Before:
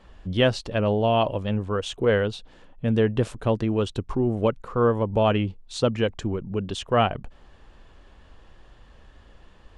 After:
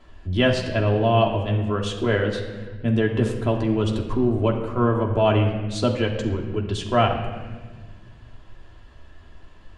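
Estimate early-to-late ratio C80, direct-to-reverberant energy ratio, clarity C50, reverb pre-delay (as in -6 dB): 8.0 dB, -1.0 dB, 6.5 dB, 3 ms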